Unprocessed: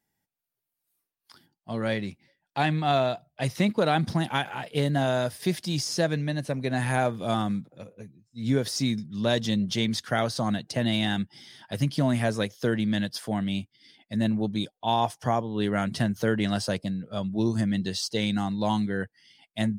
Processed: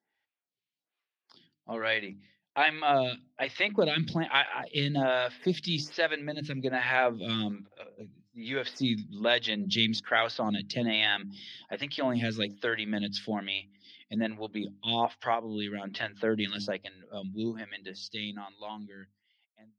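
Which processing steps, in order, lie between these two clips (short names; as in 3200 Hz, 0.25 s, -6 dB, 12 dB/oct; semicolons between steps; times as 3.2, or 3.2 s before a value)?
ending faded out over 4.30 s; air absorption 240 m; notches 50/100/150/200/250/300 Hz; 15.34–16.03 compressor, threshold -28 dBFS, peak gain reduction 6.5 dB; weighting filter D; photocell phaser 1.2 Hz; gain +1 dB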